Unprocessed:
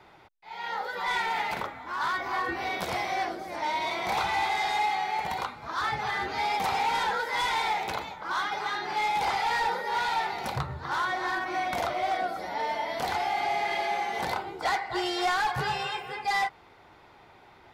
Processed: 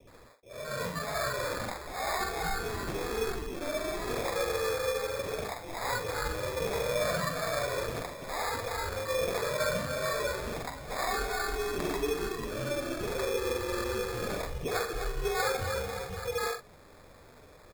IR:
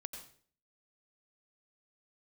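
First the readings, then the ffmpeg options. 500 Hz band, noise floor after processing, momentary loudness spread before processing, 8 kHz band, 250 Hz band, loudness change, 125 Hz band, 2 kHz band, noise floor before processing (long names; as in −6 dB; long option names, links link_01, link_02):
+5.0 dB, −54 dBFS, 6 LU, +5.0 dB, +1.5 dB, −3.5 dB, +3.0 dB, −6.0 dB, −55 dBFS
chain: -filter_complex "[0:a]equalizer=frequency=240:width=1.2:gain=6.5,asplit=2[link_01][link_02];[link_02]alimiter=level_in=4dB:limit=-24dB:level=0:latency=1:release=210,volume=-4dB,volume=3dB[link_03];[link_01][link_03]amix=inputs=2:normalize=0,afreqshift=-13,acrossover=split=850[link_04][link_05];[link_05]adelay=70[link_06];[link_04][link_06]amix=inputs=2:normalize=0,flanger=delay=3.8:depth=6.2:regen=-48:speed=1.5:shape=sinusoidal,asplit=2[link_07][link_08];[link_08]adelay=45,volume=-8dB[link_09];[link_07][link_09]amix=inputs=2:normalize=0,highpass=frequency=270:width_type=q:width=0.5412,highpass=frequency=270:width_type=q:width=1.307,lowpass=frequency=2000:width_type=q:width=0.5176,lowpass=frequency=2000:width_type=q:width=0.7071,lowpass=frequency=2000:width_type=q:width=1.932,afreqshift=-310,acrusher=samples=15:mix=1:aa=0.000001,volume=-2dB"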